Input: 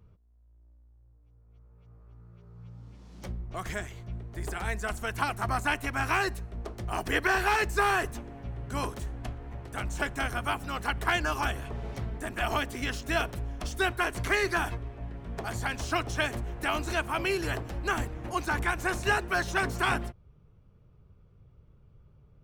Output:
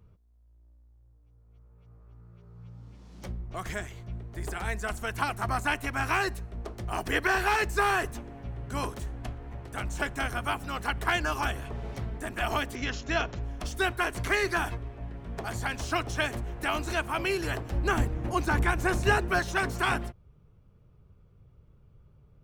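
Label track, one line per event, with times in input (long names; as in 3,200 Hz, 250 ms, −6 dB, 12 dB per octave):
12.750000	13.430000	linear-phase brick-wall low-pass 7,400 Hz
17.720000	19.390000	low-shelf EQ 500 Hz +7 dB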